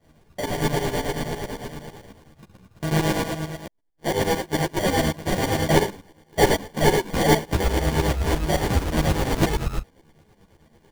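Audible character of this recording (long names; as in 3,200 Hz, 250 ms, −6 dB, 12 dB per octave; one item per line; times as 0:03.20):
a buzz of ramps at a fixed pitch in blocks of 16 samples
tremolo saw up 9 Hz, depth 85%
aliases and images of a low sample rate 1,300 Hz, jitter 0%
a shimmering, thickened sound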